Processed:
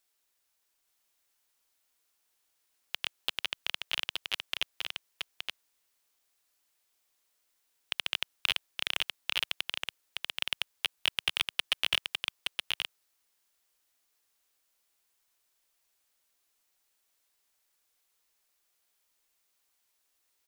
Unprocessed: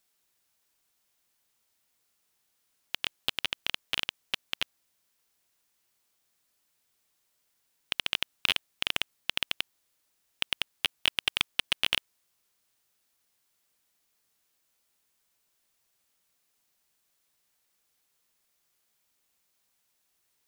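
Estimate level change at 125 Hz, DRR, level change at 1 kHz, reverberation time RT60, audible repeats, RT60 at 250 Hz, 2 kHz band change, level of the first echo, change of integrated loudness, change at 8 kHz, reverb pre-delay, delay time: can't be measured, no reverb audible, −1.5 dB, no reverb audible, 1, no reverb audible, −1.0 dB, −4.0 dB, −2.5 dB, −1.0 dB, no reverb audible, 871 ms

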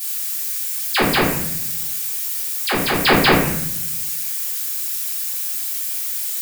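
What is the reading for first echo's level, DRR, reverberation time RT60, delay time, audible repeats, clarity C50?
no echo audible, −10.5 dB, 0.75 s, no echo audible, no echo audible, 2.0 dB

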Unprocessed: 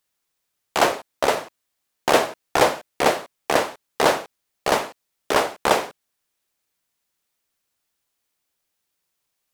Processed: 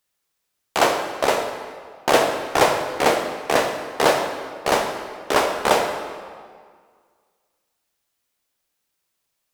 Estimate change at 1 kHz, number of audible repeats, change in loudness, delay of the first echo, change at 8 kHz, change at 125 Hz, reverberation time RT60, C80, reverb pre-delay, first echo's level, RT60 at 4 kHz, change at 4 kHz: +1.5 dB, no echo audible, +1.0 dB, no echo audible, +1.0 dB, +1.5 dB, 1.9 s, 7.0 dB, 11 ms, no echo audible, 1.4 s, +1.5 dB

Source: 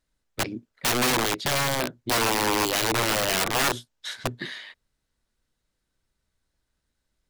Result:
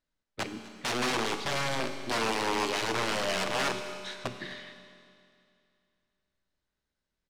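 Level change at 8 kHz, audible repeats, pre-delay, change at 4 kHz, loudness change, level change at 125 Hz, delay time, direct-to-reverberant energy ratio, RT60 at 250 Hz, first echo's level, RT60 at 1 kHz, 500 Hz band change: −10.5 dB, 1, 5 ms, −6.5 dB, −6.5 dB, −8.0 dB, 253 ms, 6.5 dB, 2.5 s, −19.5 dB, 2.5 s, −4.5 dB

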